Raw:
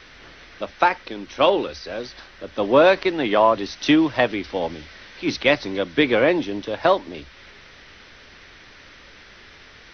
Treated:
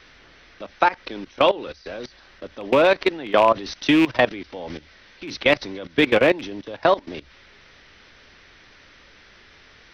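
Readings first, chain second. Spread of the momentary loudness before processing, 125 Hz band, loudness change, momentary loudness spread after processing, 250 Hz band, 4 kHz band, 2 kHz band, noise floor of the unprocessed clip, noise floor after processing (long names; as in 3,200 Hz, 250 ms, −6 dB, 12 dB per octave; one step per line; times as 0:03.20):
18 LU, −1.0 dB, +0.5 dB, 19 LU, −1.5 dB, −0.5 dB, 0.0 dB, −47 dBFS, −51 dBFS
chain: loose part that buzzes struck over −25 dBFS, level −14 dBFS
output level in coarse steps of 18 dB
level +3.5 dB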